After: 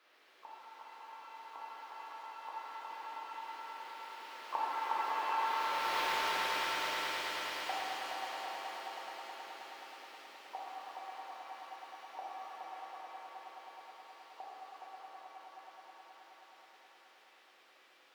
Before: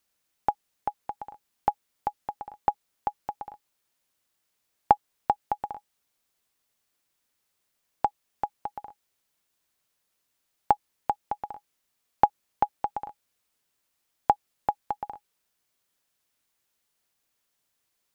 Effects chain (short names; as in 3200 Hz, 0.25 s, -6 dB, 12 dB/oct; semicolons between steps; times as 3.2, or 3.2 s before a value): zero-crossing step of -27 dBFS; Doppler pass-by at 5.98, 25 m/s, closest 4.8 m; HPF 310 Hz 24 dB/oct; high shelf 2400 Hz +4 dB; notches 50/100/150/200/250/300/350/400 Hz; harmoniser +3 st -10 dB, +4 st -16 dB; in parallel at -6 dB: hard clip -37 dBFS, distortion -6 dB; on the sum: air absorption 370 m; on a send: swelling echo 0.106 s, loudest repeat 5, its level -9 dB; on the sum: shimmer reverb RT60 2.2 s, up +7 st, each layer -8 dB, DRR -6 dB; gain -1.5 dB